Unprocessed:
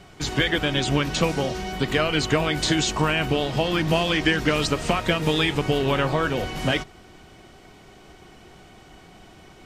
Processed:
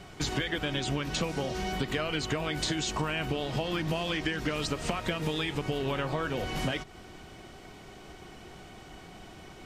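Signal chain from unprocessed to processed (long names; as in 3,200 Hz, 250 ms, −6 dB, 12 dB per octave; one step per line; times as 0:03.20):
downward compressor, threshold −28 dBFS, peak gain reduction 12 dB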